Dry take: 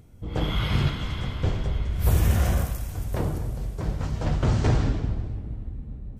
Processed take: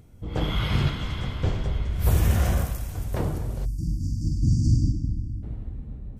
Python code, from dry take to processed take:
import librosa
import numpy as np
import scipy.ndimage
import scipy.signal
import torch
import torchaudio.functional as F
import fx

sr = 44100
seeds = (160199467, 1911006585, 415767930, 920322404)

y = fx.doubler(x, sr, ms=43.0, db=-4, at=(3.49, 4.91), fade=0.02)
y = fx.spec_erase(y, sr, start_s=3.65, length_s=1.78, low_hz=340.0, high_hz=4500.0)